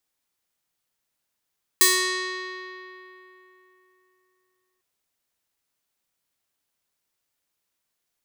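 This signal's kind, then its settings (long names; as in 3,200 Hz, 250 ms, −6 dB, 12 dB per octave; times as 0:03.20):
Karplus-Strong string F#4, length 3.00 s, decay 3.39 s, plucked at 0.49, bright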